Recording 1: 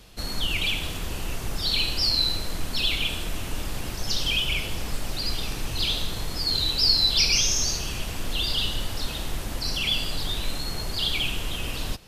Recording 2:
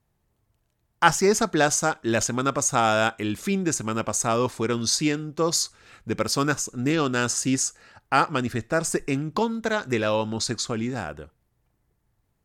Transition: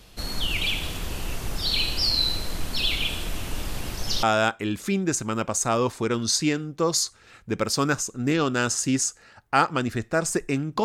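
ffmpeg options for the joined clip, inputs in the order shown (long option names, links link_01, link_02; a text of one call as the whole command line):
ffmpeg -i cue0.wav -i cue1.wav -filter_complex "[0:a]apad=whole_dur=10.84,atrim=end=10.84,atrim=end=4.232[link_01];[1:a]atrim=start=2.818:end=9.43[link_02];[link_01][link_02]acrossfade=duration=0.004:curve1=hsin:curve2=hsin" out.wav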